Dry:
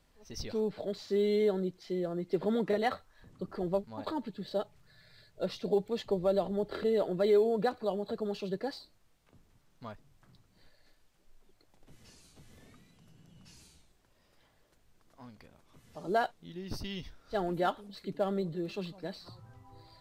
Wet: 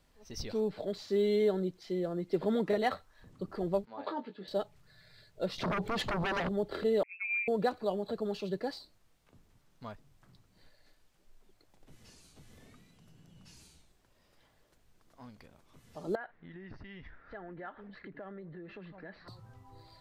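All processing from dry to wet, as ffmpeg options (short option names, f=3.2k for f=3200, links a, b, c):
-filter_complex "[0:a]asettb=1/sr,asplit=3[a][b][c];[a]atrim=end=3.854[d];[b]atrim=start=3.85:end=4.48,asetpts=PTS-STARTPTS,afade=t=in:d=0.004:c=qsin,afade=t=out:st=0.626:d=0.004:c=qsin,highpass=330,lowpass=3.2k,asplit=2[e][f];[f]adelay=21,volume=-7dB[g];[e][g]amix=inputs=2:normalize=0,atrim=end_sample=27783[h];[c]atrim=start=4.476[i];[d][h]acrossfade=d=0.004:c1=hsin:c2=qsin[j];[j][i]acrossfade=d=0.004:c1=qsin:c2=hsin,asettb=1/sr,asplit=3[k][l][m];[k]atrim=end=5.584[n];[l]atrim=start=5.58:end=6.49,asetpts=PTS-STARTPTS,afade=t=in:d=0.004:c=qsin,afade=t=out:st=0.906:d=0.004:c=qsin,highshelf=f=3.7k:g=-9,acompressor=threshold=-38dB:ratio=3:attack=3.2:release=140:knee=1:detection=peak,aeval=exprs='0.0355*sin(PI/2*3.98*val(0)/0.0355)':c=same[o];[m]atrim=start=6.486[p];[n][o]acrossfade=d=0.004:c1=hsin:c2=qsin[q];[q][p]acrossfade=d=0.004:c1=qsin:c2=hsin,asettb=1/sr,asplit=3[r][s][t];[r]atrim=end=7.034[u];[s]atrim=start=7.03:end=7.48,asetpts=PTS-STARTPTS,afade=t=in:d=0.004:c=qsin,afade=t=out:st=0.446:d=0.004:c=qsin,agate=range=-33dB:threshold=-29dB:ratio=3:release=100:detection=peak,lowpass=f=2.4k:t=q:w=0.5098,lowpass=f=2.4k:t=q:w=0.6013,lowpass=f=2.4k:t=q:w=0.9,lowpass=f=2.4k:t=q:w=2.563,afreqshift=-2800,aderivative[v];[t]atrim=start=7.476[w];[u][v]acrossfade=d=0.004:c1=hsin:c2=qsin[x];[x][w]acrossfade=d=0.004:c1=qsin:c2=hsin,asettb=1/sr,asplit=3[y][z][aa];[y]atrim=end=16.154[ab];[z]atrim=start=16.15:end=19.28,asetpts=PTS-STARTPTS,afade=t=in:d=0.004:c=qsin,afade=t=out:st=3.126:d=0.004:c=qsin,acompressor=threshold=-45dB:ratio=5:attack=3.2:release=140:knee=1:detection=peak,lowpass=f=1.8k:t=q:w=4.3[ac];[aa]atrim=start=19.276[ad];[ab][ac]acrossfade=d=0.004:c1=hsin:c2=qsin[ae];[ae][ad]acrossfade=d=0.004:c1=qsin:c2=hsin"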